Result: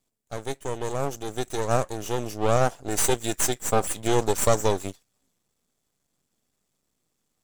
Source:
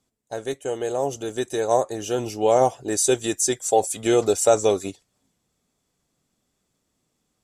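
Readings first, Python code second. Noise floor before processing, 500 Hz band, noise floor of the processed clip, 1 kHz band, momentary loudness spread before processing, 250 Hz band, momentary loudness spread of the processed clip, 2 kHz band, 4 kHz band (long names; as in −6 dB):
−75 dBFS, −5.5 dB, −77 dBFS, −3.0 dB, 11 LU, −3.5 dB, 10 LU, +1.0 dB, −1.5 dB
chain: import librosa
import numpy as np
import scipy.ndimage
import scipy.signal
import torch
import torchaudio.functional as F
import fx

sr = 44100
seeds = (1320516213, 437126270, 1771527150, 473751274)

y = fx.high_shelf(x, sr, hz=10000.0, db=7.5)
y = np.maximum(y, 0.0)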